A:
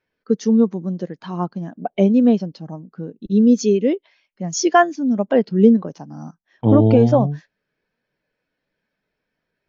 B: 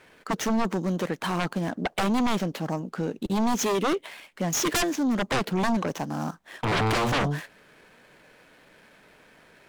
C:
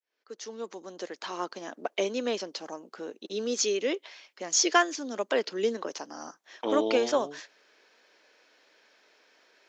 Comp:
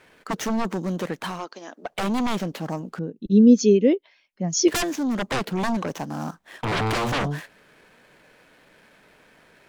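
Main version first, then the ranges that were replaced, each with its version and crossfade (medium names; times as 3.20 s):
B
1.34–1.93 s: from C, crossfade 0.24 s
2.99–4.68 s: from A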